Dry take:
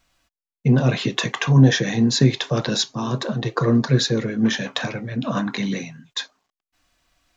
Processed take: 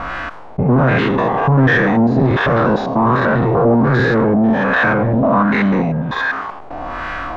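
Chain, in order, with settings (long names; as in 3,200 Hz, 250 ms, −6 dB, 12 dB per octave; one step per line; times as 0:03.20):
spectrum averaged block by block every 100 ms
low-shelf EQ 160 Hz −6 dB
power curve on the samples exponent 0.5
auto-filter low-pass sine 1.3 Hz 710–1,600 Hz
envelope flattener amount 50%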